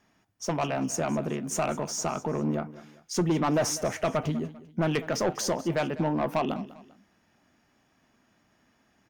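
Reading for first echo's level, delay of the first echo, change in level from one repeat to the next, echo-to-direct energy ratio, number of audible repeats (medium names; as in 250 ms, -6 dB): -17.5 dB, 198 ms, -8.0 dB, -17.0 dB, 2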